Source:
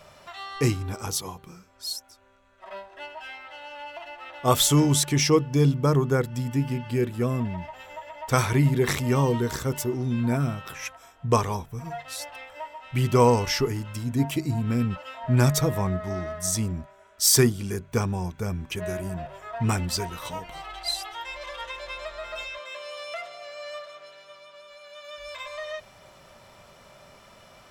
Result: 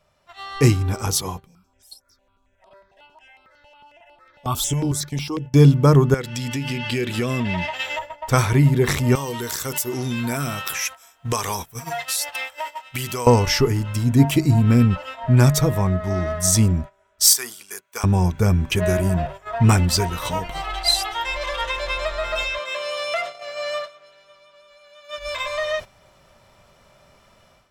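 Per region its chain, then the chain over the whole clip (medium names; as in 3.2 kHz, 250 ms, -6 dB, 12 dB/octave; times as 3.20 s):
1.46–5.54 s: compression 1.5:1, threshold -50 dBFS + stepped phaser 11 Hz 340–6500 Hz
6.14–7.99 s: frequency weighting D + compression, threshold -30 dBFS
9.15–13.27 s: tilt EQ +3.5 dB/octave + compression 3:1, threshold -33 dBFS
17.33–18.04 s: high-pass 900 Hz + treble shelf 7 kHz +10 dB + compression 2:1, threshold -36 dBFS
whole clip: gate -40 dBFS, range -14 dB; bass shelf 94 Hz +7.5 dB; level rider gain up to 11.5 dB; trim -1 dB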